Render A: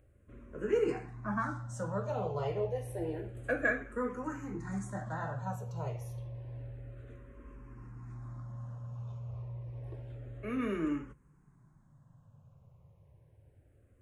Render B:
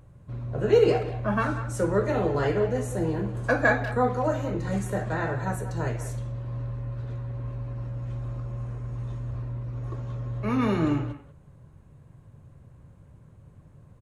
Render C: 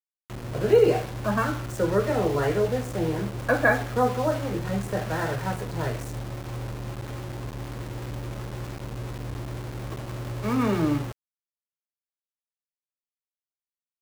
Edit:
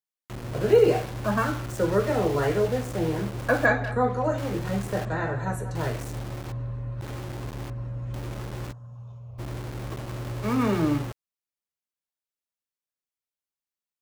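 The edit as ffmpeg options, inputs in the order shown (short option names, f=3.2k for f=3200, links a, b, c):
-filter_complex "[1:a]asplit=4[a][b][c][d];[2:a]asplit=6[e][f][g][h][i][j];[e]atrim=end=3.662[k];[a]atrim=start=3.658:end=4.382[l];[f]atrim=start=4.378:end=5.052[m];[b]atrim=start=5.048:end=5.752[n];[g]atrim=start=5.748:end=6.522[o];[c]atrim=start=6.518:end=7.012[p];[h]atrim=start=7.008:end=7.702[q];[d]atrim=start=7.698:end=8.142[r];[i]atrim=start=8.138:end=8.73[s];[0:a]atrim=start=8.71:end=9.4[t];[j]atrim=start=9.38[u];[k][l]acrossfade=d=0.004:c1=hsin:c2=hsin[v];[v][m]acrossfade=d=0.004:c1=hsin:c2=hsin[w];[w][n]acrossfade=d=0.004:c1=hsin:c2=hsin[x];[x][o]acrossfade=d=0.004:c1=hsin:c2=hsin[y];[y][p]acrossfade=d=0.004:c1=hsin:c2=hsin[z];[z][q]acrossfade=d=0.004:c1=hsin:c2=hsin[aa];[aa][r]acrossfade=d=0.004:c1=hsin:c2=hsin[ab];[ab][s]acrossfade=d=0.004:c1=hsin:c2=hsin[ac];[ac][t]acrossfade=d=0.02:c1=tri:c2=tri[ad];[ad][u]acrossfade=d=0.02:c1=tri:c2=tri"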